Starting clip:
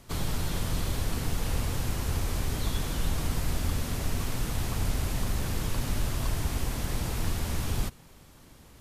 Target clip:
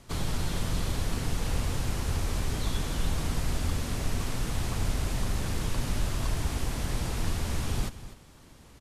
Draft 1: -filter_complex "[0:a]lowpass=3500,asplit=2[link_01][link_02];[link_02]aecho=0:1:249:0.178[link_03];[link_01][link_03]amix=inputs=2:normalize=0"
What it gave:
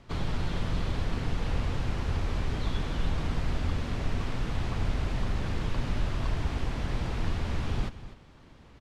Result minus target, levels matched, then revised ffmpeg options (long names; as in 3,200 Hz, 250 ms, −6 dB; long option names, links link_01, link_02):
8,000 Hz band −12.5 dB
-filter_complex "[0:a]lowpass=11000,asplit=2[link_01][link_02];[link_02]aecho=0:1:249:0.178[link_03];[link_01][link_03]amix=inputs=2:normalize=0"